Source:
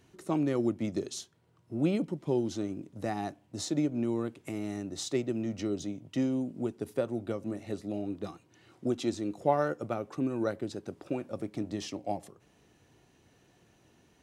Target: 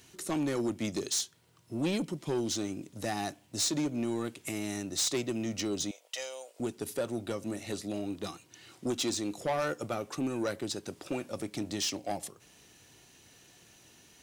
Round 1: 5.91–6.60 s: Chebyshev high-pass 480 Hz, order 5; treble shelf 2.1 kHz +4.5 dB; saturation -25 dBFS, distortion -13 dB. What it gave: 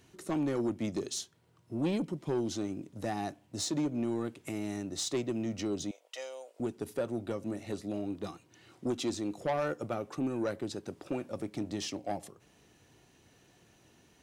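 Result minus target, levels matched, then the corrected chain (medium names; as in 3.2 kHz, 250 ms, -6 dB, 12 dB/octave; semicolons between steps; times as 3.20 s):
4 kHz band -4.5 dB
5.91–6.60 s: Chebyshev high-pass 480 Hz, order 5; treble shelf 2.1 kHz +15.5 dB; saturation -25 dBFS, distortion -11 dB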